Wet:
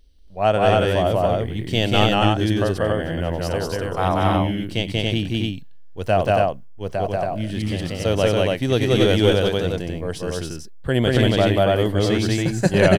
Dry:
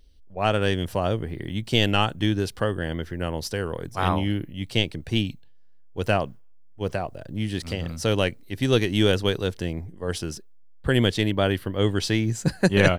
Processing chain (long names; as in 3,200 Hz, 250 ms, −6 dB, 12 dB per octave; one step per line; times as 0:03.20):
loudspeakers that aren't time-aligned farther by 64 metres −1 dB, 96 metres −2 dB
harmonic and percussive parts rebalanced harmonic +4 dB
dynamic equaliser 660 Hz, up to +8 dB, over −35 dBFS, Q 2.3
level −3 dB